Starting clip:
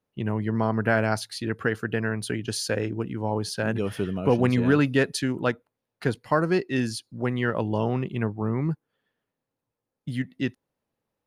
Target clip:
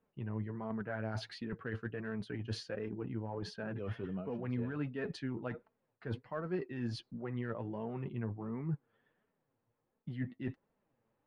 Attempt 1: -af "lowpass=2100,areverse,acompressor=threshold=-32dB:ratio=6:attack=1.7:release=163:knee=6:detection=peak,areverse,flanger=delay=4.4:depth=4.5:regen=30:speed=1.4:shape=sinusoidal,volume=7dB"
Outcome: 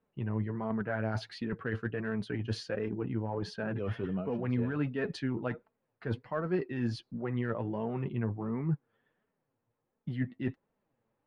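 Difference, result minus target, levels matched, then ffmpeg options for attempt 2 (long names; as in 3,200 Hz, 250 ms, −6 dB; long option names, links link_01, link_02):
downward compressor: peak gain reduction −6 dB
-af "lowpass=2100,areverse,acompressor=threshold=-39dB:ratio=6:attack=1.7:release=163:knee=6:detection=peak,areverse,flanger=delay=4.4:depth=4.5:regen=30:speed=1.4:shape=sinusoidal,volume=7dB"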